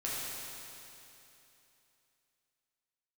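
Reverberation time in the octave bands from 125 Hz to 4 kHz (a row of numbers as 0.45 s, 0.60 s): 3.0 s, 3.0 s, 3.0 s, 3.0 s, 3.0 s, 3.0 s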